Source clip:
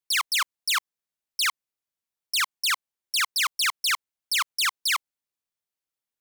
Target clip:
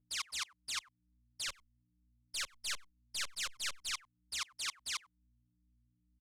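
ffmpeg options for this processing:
ffmpeg -i in.wav -filter_complex "[0:a]aecho=1:1:94:0.501,agate=range=-33dB:threshold=-23dB:ratio=3:detection=peak,asettb=1/sr,asplit=3[link_01][link_02][link_03];[link_01]atrim=end=1.484[link_04];[link_02]atrim=start=1.48:end=3.89,asetpts=PTS-STARTPTS,afade=type=in:duration=0.004:curve=qsin,afade=type=out:start_time=2.406:duration=0.004:curve=qsin,highpass=frequency=850:poles=1[link_05];[link_03]atrim=start=3.886[link_06];[link_04][link_05]acrossfade=duration=0.004:curve1=hsin:curve2=qsin[link_07];[link_07][link_06]acrossfade=duration=0.004:curve1=qsin:curve2=hsin,aeval=exprs='val(0)+0.00141*(sin(2*PI*60*n/s)+sin(2*PI*2*60*n/s)/2+sin(2*PI*3*60*n/s)/3+sin(2*PI*4*60*n/s)/4+sin(2*PI*5*60*n/s)/5)':channel_layout=same,acompressor=threshold=-36dB:ratio=2,aeval=exprs='0.0944*(cos(1*acos(clip(val(0)/0.0944,-1,1)))-cos(1*PI/2))+0.0335*(cos(3*acos(clip(val(0)/0.0944,-1,1)))-cos(3*PI/2))':channel_layout=same,alimiter=level_in=4dB:limit=-24dB:level=0:latency=1:release=109,volume=-4dB,lowpass=7800,asplit=2[link_08][link_09];[link_09]adelay=6.3,afreqshift=-2.2[link_10];[link_08][link_10]amix=inputs=2:normalize=1,volume=10.5dB" out.wav

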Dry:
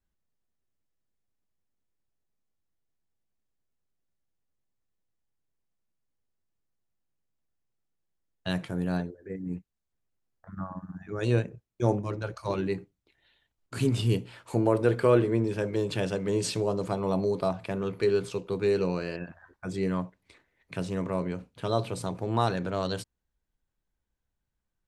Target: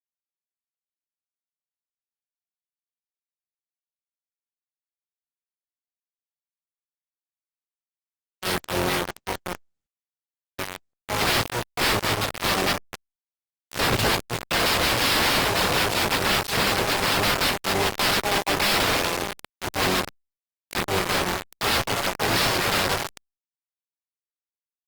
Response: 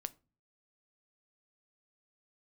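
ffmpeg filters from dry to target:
-filter_complex "[0:a]asplit=3[link_01][link_02][link_03];[link_02]asetrate=66075,aresample=44100,atempo=0.66742,volume=-5dB[link_04];[link_03]asetrate=88200,aresample=44100,atempo=0.5,volume=-1dB[link_05];[link_01][link_04][link_05]amix=inputs=3:normalize=0,asplit=2[link_06][link_07];[link_07]aecho=0:1:237|474:0.299|0.0448[link_08];[link_06][link_08]amix=inputs=2:normalize=0,adynamicsmooth=sensitivity=2.5:basefreq=4100,equalizer=frequency=230:width=1.6:gain=-12.5,asplit=2[link_09][link_10];[link_10]adelay=571.4,volume=-15dB,highshelf=frequency=4000:gain=-12.9[link_11];[link_09][link_11]amix=inputs=2:normalize=0,aresample=11025,aeval=exprs='(mod(15*val(0)+1,2)-1)/15':channel_layout=same,aresample=44100,acrusher=bits=4:mix=0:aa=0.000001,volume=6dB" -ar 48000 -c:a libopus -b:a 32k

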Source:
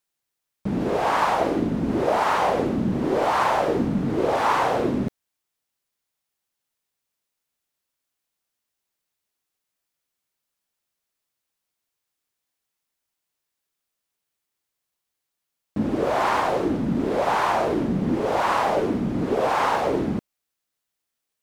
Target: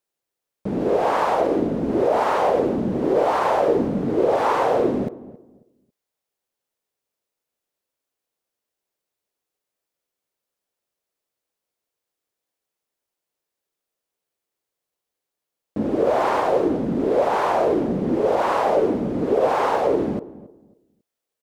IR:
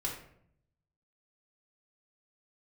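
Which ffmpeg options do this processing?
-filter_complex "[0:a]equalizer=frequency=480:width=1:gain=10,asplit=2[link_01][link_02];[link_02]adelay=273,lowpass=frequency=840:poles=1,volume=-16.5dB,asplit=2[link_03][link_04];[link_04]adelay=273,lowpass=frequency=840:poles=1,volume=0.26,asplit=2[link_05][link_06];[link_06]adelay=273,lowpass=frequency=840:poles=1,volume=0.26[link_07];[link_01][link_03][link_05][link_07]amix=inputs=4:normalize=0,alimiter=level_in=4.5dB:limit=-1dB:release=50:level=0:latency=1,volume=-8dB"

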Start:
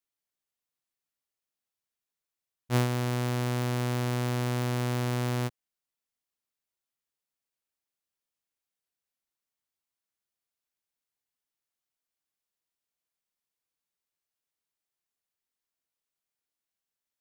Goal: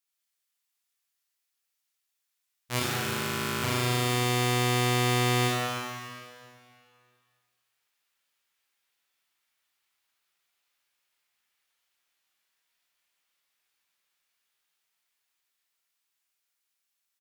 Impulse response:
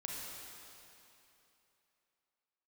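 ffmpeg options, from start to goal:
-filter_complex "[0:a]tiltshelf=frequency=820:gain=-8.5,acrossover=split=3800[link_01][link_02];[link_01]dynaudnorm=framelen=860:gausssize=9:maxgain=10dB[link_03];[link_03][link_02]amix=inputs=2:normalize=0,asplit=3[link_04][link_05][link_06];[link_04]afade=type=out:start_time=2.79:duration=0.02[link_07];[link_05]aeval=exprs='val(0)*sin(2*PI*26*n/s)':channel_layout=same,afade=type=in:start_time=2.79:duration=0.02,afade=type=out:start_time=3.61:duration=0.02[link_08];[link_06]afade=type=in:start_time=3.61:duration=0.02[link_09];[link_07][link_08][link_09]amix=inputs=3:normalize=0,asplit=2[link_10][link_11];[link_11]adelay=18,volume=-12dB[link_12];[link_10][link_12]amix=inputs=2:normalize=0,aecho=1:1:401:0.15[link_13];[1:a]atrim=start_sample=2205,asetrate=57330,aresample=44100[link_14];[link_13][link_14]afir=irnorm=-1:irlink=0,asplit=2[link_15][link_16];[link_16]volume=25dB,asoftclip=hard,volume=-25dB,volume=-7dB[link_17];[link_15][link_17]amix=inputs=2:normalize=0"

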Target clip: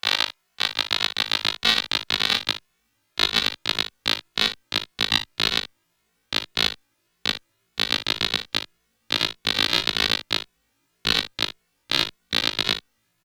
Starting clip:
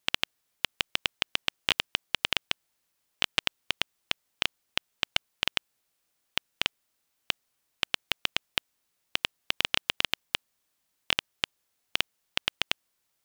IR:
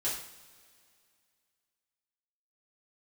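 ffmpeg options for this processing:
-filter_complex "[0:a]afftfilt=real='re':imag='-im':win_size=2048:overlap=0.75,equalizer=frequency=1000:width=0.31:gain=12,acontrast=50,asubboost=boost=6.5:cutoff=230,asetrate=57191,aresample=44100,atempo=0.771105,aecho=1:1:39|59:0.158|0.251,asplit=2[link_01][link_02];[link_02]adelay=2.3,afreqshift=1.8[link_03];[link_01][link_03]amix=inputs=2:normalize=1,volume=3.5dB"

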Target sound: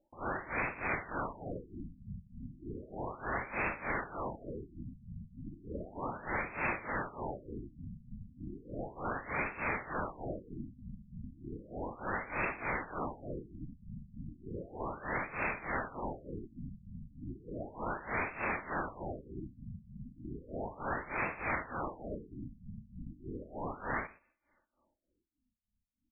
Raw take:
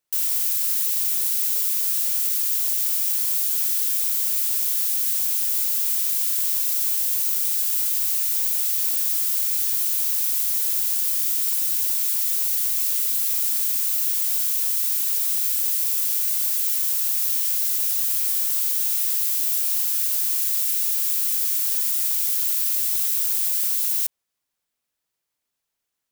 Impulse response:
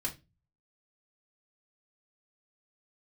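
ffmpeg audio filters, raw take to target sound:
-af "aecho=1:1:3.4:0.89,asoftclip=type=tanh:threshold=-30dB,tremolo=f=3.3:d=0.88,aecho=1:1:122:0.0841,afftfilt=real='re*lt(b*sr/1024,230*pow(2700/230,0.5+0.5*sin(2*PI*0.34*pts/sr)))':imag='im*lt(b*sr/1024,230*pow(2700/230,0.5+0.5*sin(2*PI*0.34*pts/sr)))':win_size=1024:overlap=0.75,volume=15.5dB"

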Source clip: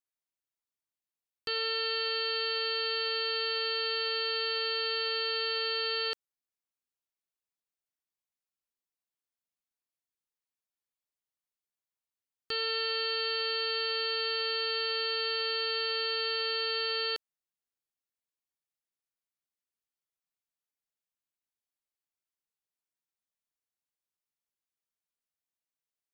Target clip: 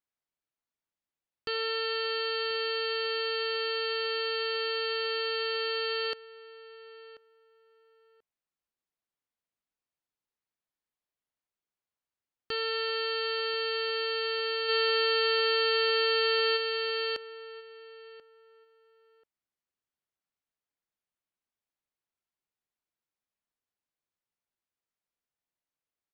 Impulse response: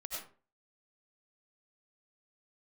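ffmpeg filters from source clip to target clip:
-filter_complex "[0:a]asplit=3[link_01][link_02][link_03];[link_01]afade=type=out:start_time=14.68:duration=0.02[link_04];[link_02]acontrast=27,afade=type=in:start_time=14.68:duration=0.02,afade=type=out:start_time=16.56:duration=0.02[link_05];[link_03]afade=type=in:start_time=16.56:duration=0.02[link_06];[link_04][link_05][link_06]amix=inputs=3:normalize=0,lowpass=frequency=2300:poles=1,asplit=2[link_07][link_08];[link_08]adelay=1036,lowpass=frequency=1500:poles=1,volume=-15.5dB,asplit=2[link_09][link_10];[link_10]adelay=1036,lowpass=frequency=1500:poles=1,volume=0.22[link_11];[link_07][link_09][link_11]amix=inputs=3:normalize=0,volume=3.5dB"

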